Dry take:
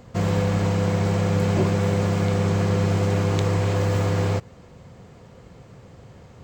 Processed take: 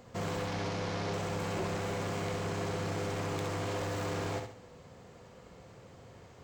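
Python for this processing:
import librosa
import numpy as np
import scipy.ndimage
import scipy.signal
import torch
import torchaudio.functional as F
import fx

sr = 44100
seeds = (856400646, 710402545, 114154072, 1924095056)

p1 = fx.delta_mod(x, sr, bps=32000, step_db=-29.0, at=(0.47, 1.13))
p2 = fx.bass_treble(p1, sr, bass_db=-7, treble_db=1)
p3 = 10.0 ** (-26.0 / 20.0) * np.tanh(p2 / 10.0 ** (-26.0 / 20.0))
p4 = p3 + fx.echo_feedback(p3, sr, ms=67, feedback_pct=37, wet_db=-6, dry=0)
y = p4 * librosa.db_to_amplitude(-5.0)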